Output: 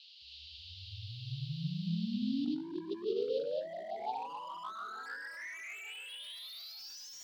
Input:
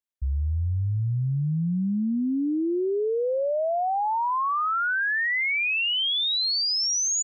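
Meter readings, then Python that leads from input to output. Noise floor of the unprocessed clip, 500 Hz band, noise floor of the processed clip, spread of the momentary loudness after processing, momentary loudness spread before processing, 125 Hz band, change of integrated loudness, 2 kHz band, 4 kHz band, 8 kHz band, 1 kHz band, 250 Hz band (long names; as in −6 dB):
−25 dBFS, −11.0 dB, −51 dBFS, 11 LU, 5 LU, −15.5 dB, −15.5 dB, −20.5 dB, −19.5 dB, can't be measured, −16.5 dB, −11.0 dB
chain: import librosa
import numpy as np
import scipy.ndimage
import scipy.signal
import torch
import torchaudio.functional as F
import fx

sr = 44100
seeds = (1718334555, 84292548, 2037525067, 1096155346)

p1 = fx.fade_in_head(x, sr, length_s=1.24)
p2 = scipy.signal.sosfilt(scipy.signal.butter(2, 180.0, 'highpass', fs=sr, output='sos'), p1)
p3 = fx.comb_fb(p2, sr, f0_hz=330.0, decay_s=0.21, harmonics='all', damping=0.0, mix_pct=90)
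p4 = fx.dmg_noise_band(p3, sr, seeds[0], low_hz=2800.0, high_hz=4700.0, level_db=-70.0)
p5 = fx.tilt_eq(p4, sr, slope=2.5)
p6 = fx.rev_gated(p5, sr, seeds[1], gate_ms=330, shape='rising', drr_db=-4.5)
p7 = np.clip(10.0 ** (32.5 / 20.0) * p6, -1.0, 1.0) / 10.0 ** (32.5 / 20.0)
p8 = fx.over_compress(p7, sr, threshold_db=-41.0, ratio=-0.5)
p9 = fx.high_shelf(p8, sr, hz=5000.0, db=-5.0)
p10 = p9 + fx.echo_feedback(p9, sr, ms=892, feedback_pct=41, wet_db=-22, dry=0)
y = p10 * 10.0 ** (3.5 / 20.0)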